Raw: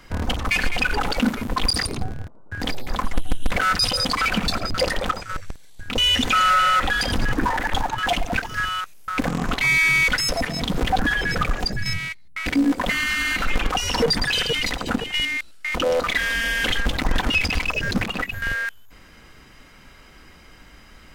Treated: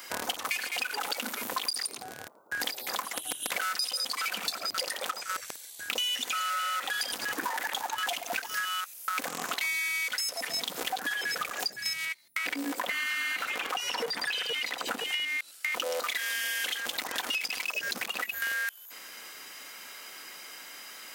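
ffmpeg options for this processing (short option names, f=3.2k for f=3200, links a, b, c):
-filter_complex "[0:a]asettb=1/sr,asplit=3[a][b][c];[a]atrim=end=12.054[d];[b]atrim=start=12.05:end=15.76,asetpts=PTS-STARTPTS,afade=t=in:d=0.004:c=qsin,afade=t=out:st=3.706:d=0.004:c=qsin,acrossover=split=3300[e][f];[f]acompressor=threshold=-41dB:ratio=4:attack=1:release=60[g];[e][g]amix=inputs=2:normalize=0[h];[c]atrim=start=15.756[i];[d][h]acrossfade=d=0.004:c1=hsin:c2=qsin[j];[j][i]acrossfade=d=0.004:c1=qsin:c2=hsin,highpass=480,aemphasis=mode=production:type=75kf,acompressor=threshold=-30dB:ratio=10,volume=1dB"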